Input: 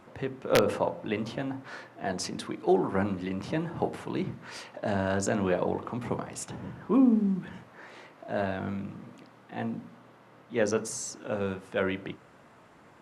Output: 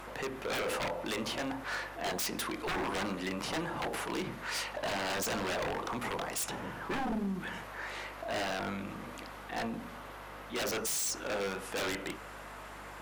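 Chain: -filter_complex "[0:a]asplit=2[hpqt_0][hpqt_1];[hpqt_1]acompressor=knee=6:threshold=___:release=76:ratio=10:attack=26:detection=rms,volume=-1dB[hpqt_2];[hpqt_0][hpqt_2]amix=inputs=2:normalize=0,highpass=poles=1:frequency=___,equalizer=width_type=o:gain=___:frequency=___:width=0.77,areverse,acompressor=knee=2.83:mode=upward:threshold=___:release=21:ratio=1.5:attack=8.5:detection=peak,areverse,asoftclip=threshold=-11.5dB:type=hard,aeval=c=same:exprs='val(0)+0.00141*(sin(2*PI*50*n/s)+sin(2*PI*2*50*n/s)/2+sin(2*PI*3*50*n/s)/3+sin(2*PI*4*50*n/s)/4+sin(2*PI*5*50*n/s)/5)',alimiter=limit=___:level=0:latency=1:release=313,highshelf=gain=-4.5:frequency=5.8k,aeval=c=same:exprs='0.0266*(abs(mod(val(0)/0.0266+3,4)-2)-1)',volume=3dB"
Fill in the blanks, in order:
-34dB, 870, 12, 13k, -41dB, -14.5dB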